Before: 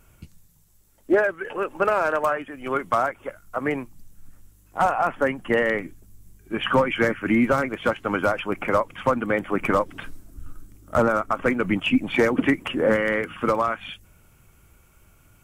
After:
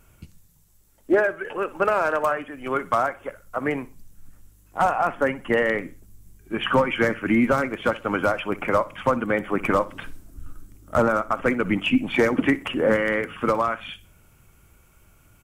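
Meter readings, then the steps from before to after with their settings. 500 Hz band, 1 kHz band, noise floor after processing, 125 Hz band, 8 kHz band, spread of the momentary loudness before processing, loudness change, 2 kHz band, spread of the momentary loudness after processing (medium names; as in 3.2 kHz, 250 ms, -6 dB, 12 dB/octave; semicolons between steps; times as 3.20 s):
0.0 dB, 0.0 dB, -57 dBFS, 0.0 dB, 0.0 dB, 10 LU, 0.0 dB, 0.0 dB, 10 LU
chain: feedback delay 62 ms, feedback 30%, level -18.5 dB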